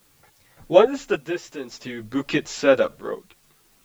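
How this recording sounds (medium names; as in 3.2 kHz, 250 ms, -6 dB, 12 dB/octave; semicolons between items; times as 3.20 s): random-step tremolo, depth 75%; a quantiser's noise floor 10-bit, dither triangular; a shimmering, thickened sound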